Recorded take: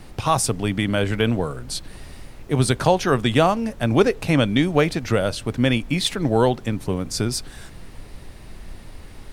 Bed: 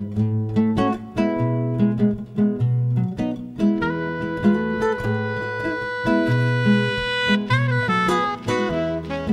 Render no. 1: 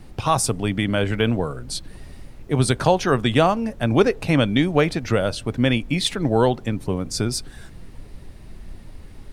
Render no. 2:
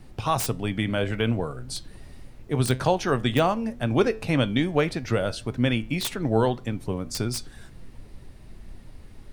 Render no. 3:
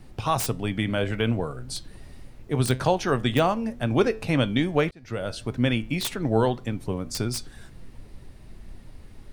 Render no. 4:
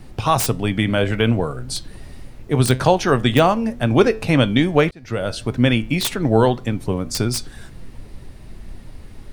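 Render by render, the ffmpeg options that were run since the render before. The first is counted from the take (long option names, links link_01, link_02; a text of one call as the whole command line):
ffmpeg -i in.wav -af "afftdn=noise_reduction=6:noise_floor=-42" out.wav
ffmpeg -i in.wav -filter_complex "[0:a]acrossover=split=2700[link_01][link_02];[link_02]aeval=exprs='(mod(7.5*val(0)+1,2)-1)/7.5':channel_layout=same[link_03];[link_01][link_03]amix=inputs=2:normalize=0,flanger=delay=7.7:depth=1.4:regen=84:speed=1.8:shape=sinusoidal" out.wav
ffmpeg -i in.wav -filter_complex "[0:a]asplit=2[link_01][link_02];[link_01]atrim=end=4.91,asetpts=PTS-STARTPTS,afade=type=out:start_time=4.906:duration=0.004:curve=hsin[link_03];[link_02]atrim=start=4.91,asetpts=PTS-STARTPTS,afade=type=in:duration=0.54[link_04];[link_03][link_04]concat=n=2:v=0:a=1" out.wav
ffmpeg -i in.wav -af "volume=7dB,alimiter=limit=-2dB:level=0:latency=1" out.wav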